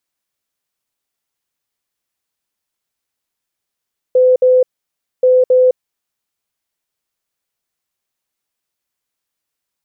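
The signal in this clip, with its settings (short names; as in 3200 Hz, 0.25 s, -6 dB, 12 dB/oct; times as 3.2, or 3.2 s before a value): beep pattern sine 508 Hz, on 0.21 s, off 0.06 s, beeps 2, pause 0.60 s, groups 2, -6.5 dBFS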